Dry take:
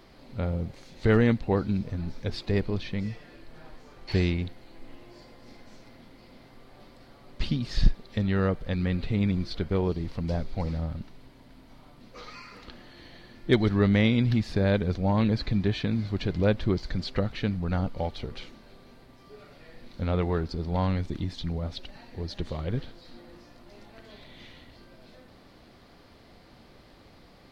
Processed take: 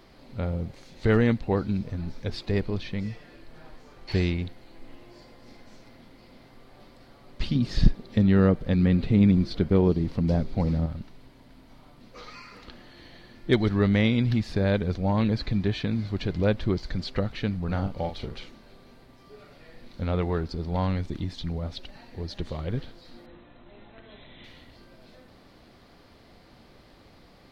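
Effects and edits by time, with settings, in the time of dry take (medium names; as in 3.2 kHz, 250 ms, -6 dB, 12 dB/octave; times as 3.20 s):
7.55–10.86 s: peaking EQ 220 Hz +8 dB 2.4 oct
17.64–18.36 s: doubling 41 ms -7.5 dB
23.26–24.44 s: brick-wall FIR low-pass 4.1 kHz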